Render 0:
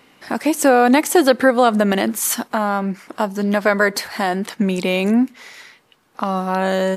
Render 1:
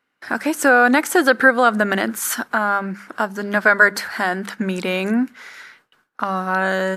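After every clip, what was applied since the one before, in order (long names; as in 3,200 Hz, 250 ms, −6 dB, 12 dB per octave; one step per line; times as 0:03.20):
mains-hum notches 50/100/150/200 Hz
noise gate with hold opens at −36 dBFS
parametric band 1,500 Hz +12.5 dB 0.56 octaves
level −3.5 dB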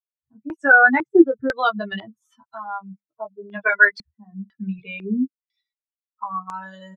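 spectral dynamics exaggerated over time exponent 3
double-tracking delay 15 ms −4 dB
low-pass on a step sequencer 2 Hz 210–7,400 Hz
level −3 dB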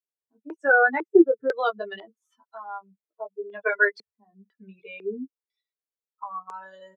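high-pass with resonance 430 Hz, resonance Q 4.9
level −8 dB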